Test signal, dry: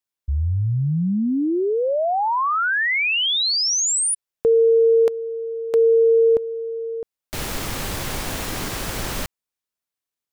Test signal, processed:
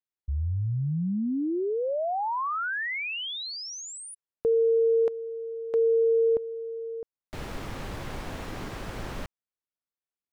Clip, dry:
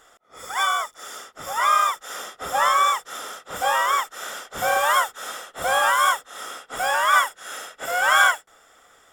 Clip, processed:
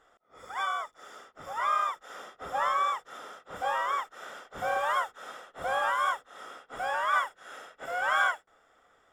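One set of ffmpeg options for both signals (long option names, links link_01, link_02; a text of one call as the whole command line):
ffmpeg -i in.wav -af "lowpass=frequency=1700:poles=1,volume=-7dB" out.wav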